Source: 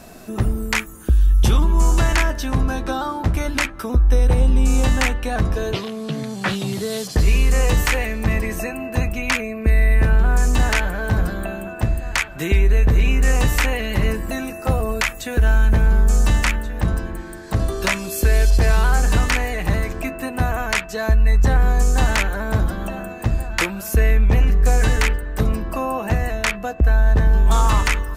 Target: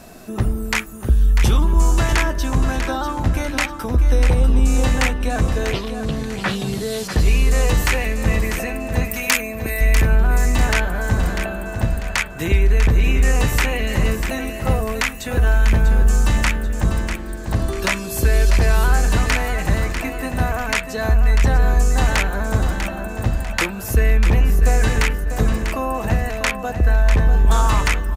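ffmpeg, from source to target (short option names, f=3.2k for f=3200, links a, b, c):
-filter_complex "[0:a]asettb=1/sr,asplit=3[a][b][c];[a]atrim=end=9.054[d];[b]atrim=start=9.05:end=9.81,asetpts=PTS-STARTPTS,afade=t=in:d=0.004:c=qsin,afade=t=out:st=0.756:d=0.004:c=qsin,aemphasis=mode=production:type=bsi[e];[c]atrim=start=9.806[f];[d][e]acrossfade=d=0.004:c1=hsin:c2=qsin[g];[g][f]acrossfade=d=0.004:c1=qsin:c2=hsin,aecho=1:1:645|1290|1935|2580:0.376|0.132|0.046|0.0161"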